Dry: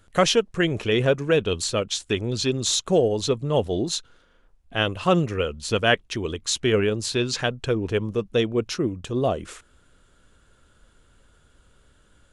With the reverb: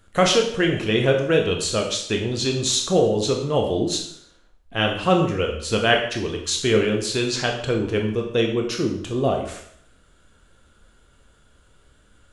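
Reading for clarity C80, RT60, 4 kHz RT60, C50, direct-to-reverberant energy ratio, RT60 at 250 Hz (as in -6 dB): 9.0 dB, 0.65 s, 0.60 s, 6.5 dB, 1.5 dB, 0.65 s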